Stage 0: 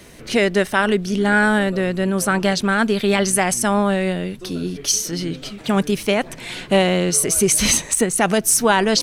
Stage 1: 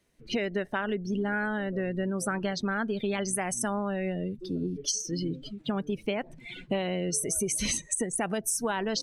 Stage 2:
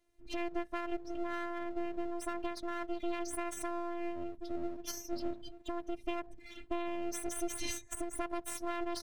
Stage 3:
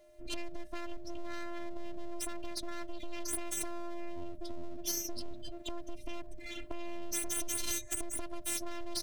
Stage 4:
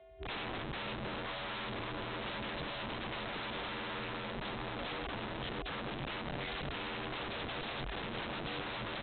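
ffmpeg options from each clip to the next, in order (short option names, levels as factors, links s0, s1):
-af "afftdn=nr=24:nf=-26,acompressor=threshold=0.0794:ratio=6,volume=0.596"
-af "afftfilt=real='hypot(re,im)*cos(PI*b)':imag='0':win_size=512:overlap=0.75,tiltshelf=f=730:g=4,aeval=exprs='max(val(0),0)':c=same,volume=0.841"
-filter_complex "[0:a]acrossover=split=220|3000[s0][s1][s2];[s1]acompressor=threshold=0.00251:ratio=4[s3];[s0][s3][s2]amix=inputs=3:normalize=0,aeval=exprs='(tanh(79.4*val(0)+0.65)-tanh(0.65))/79.4':c=same,aeval=exprs='val(0)+0.000224*sin(2*PI*610*n/s)':c=same,volume=5.01"
-af "afreqshift=45,aresample=8000,aeval=exprs='(mod(89.1*val(0)+1,2)-1)/89.1':c=same,aresample=44100,volume=1.5"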